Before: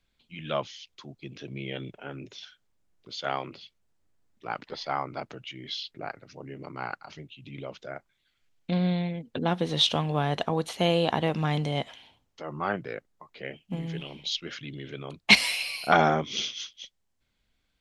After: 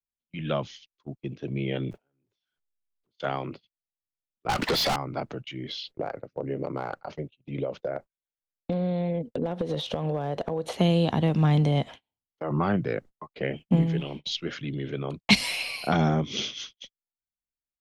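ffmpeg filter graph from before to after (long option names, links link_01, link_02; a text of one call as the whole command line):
ffmpeg -i in.wav -filter_complex "[0:a]asettb=1/sr,asplit=3[link_01][link_02][link_03];[link_01]atrim=end=1.914[link_04];[link_02]atrim=start=1.91:end=3.2,asetpts=PTS-STARTPTS,afade=type=in:duration=0.004:curve=qsin,afade=type=out:start_time=1.286:duration=0.004:curve=qsin,aeval=exprs='val(0)+0.5*0.00376*sgn(val(0))':channel_layout=same,acompressor=threshold=-47dB:ratio=4:attack=3.2:release=140:knee=1:detection=peak[link_05];[link_03]atrim=start=3.196[link_06];[link_04][link_05]acrossfade=duration=0.004:curve1=hsin:curve2=qsin[link_07];[link_07][link_06]acrossfade=duration=0.004:curve1=qsin:curve2=hsin,asettb=1/sr,asplit=3[link_08][link_09][link_10];[link_08]atrim=end=4.494[link_11];[link_09]atrim=start=4.49:end=4.96,asetpts=PTS-STARTPTS,afade=type=in:duration=0.004:curve=qsin,afade=type=out:start_time=0.466:duration=0.004:curve=qsin,acompressor=mode=upward:threshold=-35dB:ratio=2.5:attack=3.2:release=140:knee=2.83:detection=peak,asplit=2[link_12][link_13];[link_13]highpass=frequency=720:poles=1,volume=34dB,asoftclip=type=tanh:threshold=-15dB[link_14];[link_12][link_14]amix=inputs=2:normalize=0,lowpass=frequency=7500:poles=1,volume=-6dB[link_15];[link_10]atrim=start=4.956[link_16];[link_11][link_15]acrossfade=duration=0.004:curve1=hsin:curve2=qsin[link_17];[link_17][link_16]acrossfade=duration=0.004:curve1=qsin:curve2=hsin,asettb=1/sr,asplit=3[link_18][link_19][link_20];[link_18]atrim=end=5.684[link_21];[link_19]atrim=start=5.68:end=10.75,asetpts=PTS-STARTPTS,afade=type=in:duration=0.004:curve=qsin,afade=type=out:start_time=5.066:duration=0.004:curve=qsin,equalizer=frequency=530:width_type=o:width=0.77:gain=10,acompressor=threshold=-30dB:ratio=8:attack=3.2:release=140:knee=1:detection=peak,asoftclip=type=hard:threshold=-26dB[link_22];[link_20]atrim=start=10.746[link_23];[link_21][link_22]acrossfade=duration=0.004:curve1=hsin:curve2=qsin[link_24];[link_24][link_23]acrossfade=duration=0.004:curve1=qsin:curve2=hsin,asettb=1/sr,asplit=3[link_25][link_26][link_27];[link_25]atrim=end=12.504[link_28];[link_26]atrim=start=12.5:end=13.84,asetpts=PTS-STARTPTS,afade=type=in:duration=0.004:curve=qsin,afade=type=out:start_time=1.336:duration=0.004:curve=qsin,acontrast=25,highshelf=frequency=9700:gain=-2.5[link_29];[link_27]atrim=start=13.836[link_30];[link_28][link_29]acrossfade=duration=0.004:curve1=hsin:curve2=qsin[link_31];[link_31][link_30]acrossfade=duration=0.004:curve1=qsin:curve2=hsin,agate=range=-36dB:threshold=-43dB:ratio=16:detection=peak,tiltshelf=frequency=1500:gain=5,acrossover=split=250|3000[link_32][link_33][link_34];[link_33]acompressor=threshold=-29dB:ratio=6[link_35];[link_32][link_35][link_34]amix=inputs=3:normalize=0,volume=3dB" out.wav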